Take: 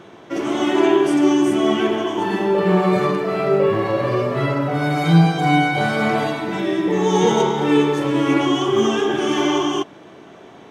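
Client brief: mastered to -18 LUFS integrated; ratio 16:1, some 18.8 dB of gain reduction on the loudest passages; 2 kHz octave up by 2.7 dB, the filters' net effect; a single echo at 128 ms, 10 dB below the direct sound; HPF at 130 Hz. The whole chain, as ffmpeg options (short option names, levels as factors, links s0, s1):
-af "highpass=130,equalizer=f=2000:t=o:g=3.5,acompressor=threshold=0.0355:ratio=16,aecho=1:1:128:0.316,volume=5.31"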